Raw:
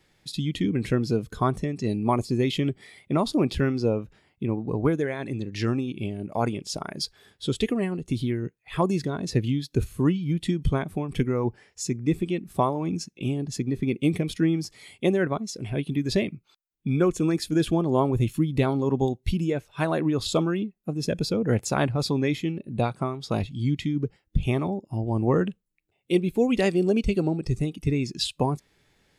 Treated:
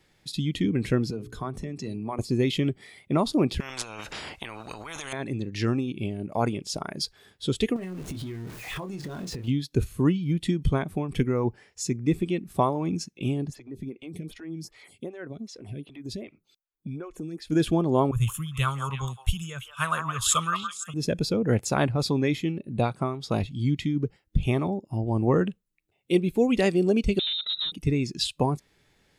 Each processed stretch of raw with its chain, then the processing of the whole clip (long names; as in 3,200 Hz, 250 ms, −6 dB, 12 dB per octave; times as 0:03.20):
0:01.10–0:02.19: mains-hum notches 60/120/180/240/300/360/420 Hz + downward compressor 4 to 1, threshold −29 dBFS + multiband upward and downward expander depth 40%
0:03.60–0:05.13: low-pass filter 9,600 Hz + compressor whose output falls as the input rises −31 dBFS + every bin compressed towards the loudest bin 10 to 1
0:07.76–0:09.48: converter with a step at zero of −35.5 dBFS + double-tracking delay 27 ms −7.5 dB + downward compressor 16 to 1, threshold −31 dBFS
0:13.50–0:17.50: downward compressor 4 to 1, threshold −32 dBFS + phaser with staggered stages 2.6 Hz
0:18.11–0:20.94: drawn EQ curve 130 Hz 0 dB, 200 Hz −11 dB, 310 Hz −25 dB, 490 Hz −13 dB, 780 Hz −13 dB, 1,200 Hz +11 dB, 2,100 Hz −3 dB, 3,100 Hz +9 dB, 4,400 Hz −8 dB, 6,900 Hz +11 dB + echo through a band-pass that steps 168 ms, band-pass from 1,000 Hz, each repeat 1.4 octaves, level −2.5 dB + multiband upward and downward expander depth 40%
0:27.19–0:27.72: gain into a clipping stage and back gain 26.5 dB + voice inversion scrambler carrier 3,900 Hz
whole clip: no processing